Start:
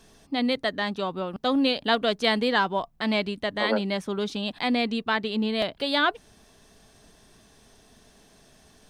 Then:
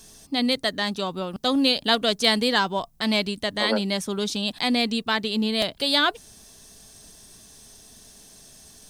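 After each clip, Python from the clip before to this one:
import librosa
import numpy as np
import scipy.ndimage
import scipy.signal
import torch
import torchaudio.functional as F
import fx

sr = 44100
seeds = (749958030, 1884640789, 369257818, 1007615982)

y = fx.bass_treble(x, sr, bass_db=3, treble_db=15)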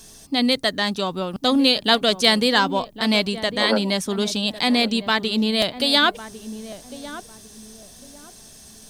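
y = fx.echo_filtered(x, sr, ms=1102, feedback_pct=31, hz=920.0, wet_db=-12.5)
y = F.gain(torch.from_numpy(y), 3.5).numpy()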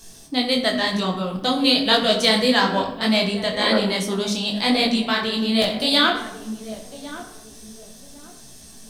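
y = fx.room_shoebox(x, sr, seeds[0], volume_m3=350.0, walls='mixed', distance_m=0.7)
y = fx.detune_double(y, sr, cents=36)
y = F.gain(torch.from_numpy(y), 2.5).numpy()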